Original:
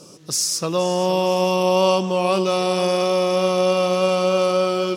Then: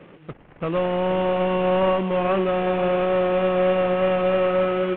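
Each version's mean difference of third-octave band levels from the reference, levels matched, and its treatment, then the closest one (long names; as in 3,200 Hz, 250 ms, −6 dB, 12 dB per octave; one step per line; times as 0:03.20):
9.0 dB: variable-slope delta modulation 16 kbit/s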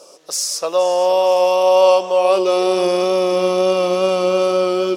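4.5 dB: high-pass filter sweep 590 Hz → 280 Hz, 0:02.11–0:02.96
tape wow and flutter 19 cents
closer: second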